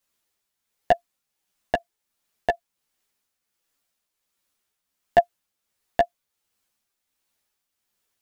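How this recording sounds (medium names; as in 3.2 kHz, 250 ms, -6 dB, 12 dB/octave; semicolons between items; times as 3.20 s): tremolo triangle 1.4 Hz, depth 50%; a shimmering, thickened sound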